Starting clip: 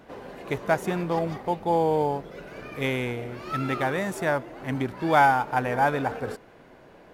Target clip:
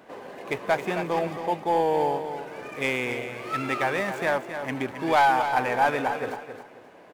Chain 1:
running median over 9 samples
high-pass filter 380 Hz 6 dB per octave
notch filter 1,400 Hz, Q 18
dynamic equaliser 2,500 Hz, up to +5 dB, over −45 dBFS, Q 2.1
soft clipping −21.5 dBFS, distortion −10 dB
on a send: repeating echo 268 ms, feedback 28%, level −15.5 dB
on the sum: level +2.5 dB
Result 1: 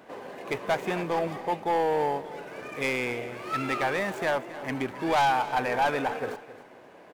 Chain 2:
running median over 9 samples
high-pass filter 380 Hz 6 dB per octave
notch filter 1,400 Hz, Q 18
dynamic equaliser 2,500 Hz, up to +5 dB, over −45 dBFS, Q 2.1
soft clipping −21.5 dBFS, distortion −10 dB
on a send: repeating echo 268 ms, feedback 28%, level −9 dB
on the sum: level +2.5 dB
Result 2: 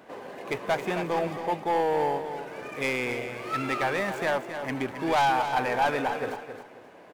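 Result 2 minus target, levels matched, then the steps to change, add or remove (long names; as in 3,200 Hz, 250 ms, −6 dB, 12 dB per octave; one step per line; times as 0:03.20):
soft clipping: distortion +6 dB
change: soft clipping −15 dBFS, distortion −16 dB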